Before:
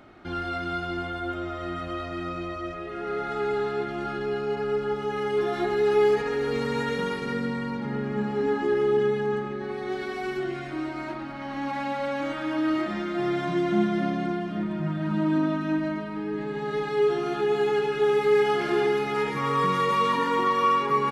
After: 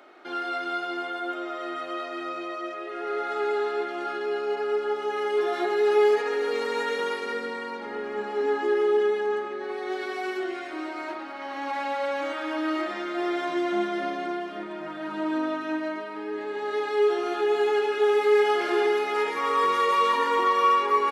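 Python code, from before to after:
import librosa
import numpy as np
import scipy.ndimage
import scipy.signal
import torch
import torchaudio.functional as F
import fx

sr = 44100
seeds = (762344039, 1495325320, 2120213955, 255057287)

y = scipy.signal.sosfilt(scipy.signal.butter(4, 350.0, 'highpass', fs=sr, output='sos'), x)
y = y * librosa.db_to_amplitude(1.5)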